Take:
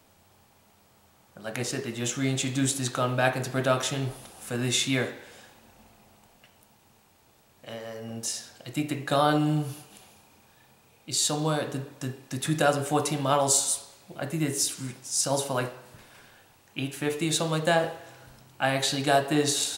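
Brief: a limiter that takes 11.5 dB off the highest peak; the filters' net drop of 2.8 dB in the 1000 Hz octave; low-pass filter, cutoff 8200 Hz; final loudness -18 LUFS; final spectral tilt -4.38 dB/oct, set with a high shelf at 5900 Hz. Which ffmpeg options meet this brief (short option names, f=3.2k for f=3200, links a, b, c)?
-af "lowpass=8.2k,equalizer=f=1k:t=o:g=-4,highshelf=f=5.9k:g=-8,volume=15dB,alimiter=limit=-7dB:level=0:latency=1"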